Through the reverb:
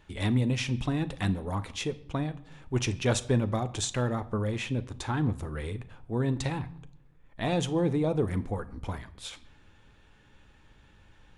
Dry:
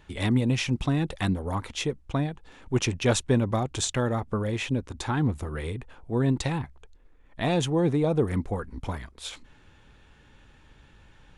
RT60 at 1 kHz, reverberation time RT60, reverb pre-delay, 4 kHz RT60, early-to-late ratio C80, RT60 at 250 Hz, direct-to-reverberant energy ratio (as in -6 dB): 0.75 s, 0.75 s, 10 ms, 0.55 s, 20.5 dB, 0.95 s, 11.5 dB